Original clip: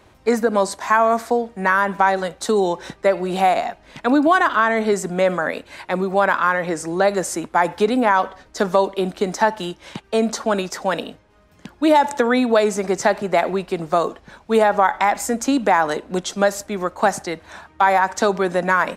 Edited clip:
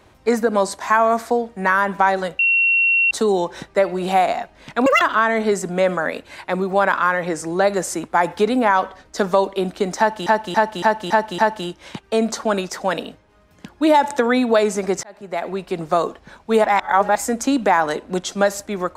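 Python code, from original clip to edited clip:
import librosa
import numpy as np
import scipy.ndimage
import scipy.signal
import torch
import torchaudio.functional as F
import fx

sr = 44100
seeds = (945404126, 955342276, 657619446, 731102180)

y = fx.edit(x, sr, fx.insert_tone(at_s=2.39, length_s=0.72, hz=2730.0, db=-13.0),
    fx.speed_span(start_s=4.14, length_s=0.28, speed=1.83),
    fx.repeat(start_s=9.39, length_s=0.28, count=6),
    fx.fade_in_span(start_s=13.04, length_s=0.79),
    fx.reverse_span(start_s=14.65, length_s=0.51), tone=tone)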